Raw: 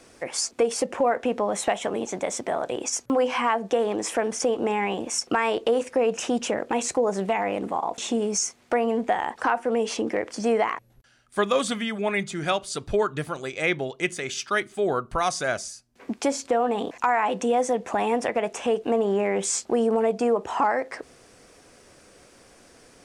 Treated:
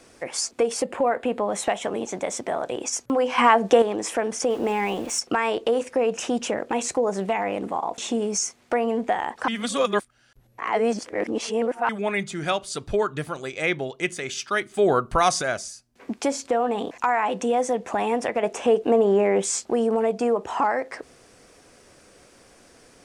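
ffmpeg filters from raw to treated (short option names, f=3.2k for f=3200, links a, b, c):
-filter_complex "[0:a]asettb=1/sr,asplit=3[a][b][c];[a]atrim=end=0.824[d];[b]atrim=start=0.82:end=1.5,asetpts=PTS-STARTPTS,afade=t=in:d=0.004:c=qsin,afade=t=out:st=0.676:d=0.004:c=qsin,equalizer=f=5.8k:t=o:w=0.23:g=-14[e];[c]atrim=start=1.496[f];[d][e]acrossfade=d=0.004:c1=hsin:c2=qsin[g];[g][f]acrossfade=d=0.004:c1=qsin:c2=hsin,asettb=1/sr,asplit=3[h][i][j];[h]atrim=end=4.504[k];[i]atrim=start=4.5:end=5.2,asetpts=PTS-STARTPTS,afade=t=in:d=0.004:c=qsin,afade=t=out:st=0.696:d=0.004:c=qsin,aeval=exprs='val(0)+0.5*0.0126*sgn(val(0))':c=same[l];[j]atrim=start=5.196[m];[k][l]acrossfade=d=0.004:c1=hsin:c2=qsin[n];[n][m]acrossfade=d=0.004:c1=qsin:c2=hsin,asettb=1/sr,asplit=3[o][p][q];[o]atrim=end=18.434[r];[p]atrim=start=18.43:end=19.42,asetpts=PTS-STARTPTS,afade=t=in:d=0.004:c=qsin,afade=t=out:st=0.986:d=0.004:c=qsin,equalizer=f=410:w=0.62:g=5[s];[q]atrim=start=19.416[t];[r][s]acrossfade=d=0.004:c1=hsin:c2=qsin[u];[u][t]acrossfade=d=0.004:c1=qsin:c2=hsin,asplit=7[v][w][x][y][z][aa][ab];[v]atrim=end=3.382[ac];[w]atrim=start=3.378:end=3.822,asetpts=PTS-STARTPTS,volume=7dB[ad];[x]atrim=start=3.818:end=9.482[ae];[y]atrim=start=9.478:end=11.892,asetpts=PTS-STARTPTS,areverse[af];[z]atrim=start=11.888:end=14.742[ag];[aa]atrim=start=14.738:end=15.422,asetpts=PTS-STARTPTS,volume=5dB[ah];[ab]atrim=start=15.418[ai];[ac][ad]acrossfade=d=0.004:c1=hsin:c2=hsin[aj];[aj][ae]acrossfade=d=0.004:c1=hsin:c2=hsin[ak];[ak][af]acrossfade=d=0.004:c1=hsin:c2=hsin[al];[al][ag]acrossfade=d=0.004:c1=hsin:c2=hsin[am];[am][ah]acrossfade=d=0.004:c1=hsin:c2=hsin[an];[an][ai]acrossfade=d=0.004:c1=hsin:c2=hsin"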